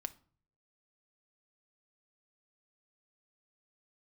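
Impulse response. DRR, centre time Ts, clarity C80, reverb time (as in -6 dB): 9.0 dB, 3 ms, 24.0 dB, 0.45 s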